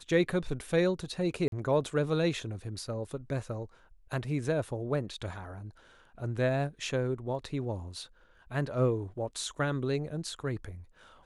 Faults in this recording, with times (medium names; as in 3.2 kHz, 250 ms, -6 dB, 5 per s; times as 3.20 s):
1.48–1.52 s: dropout 42 ms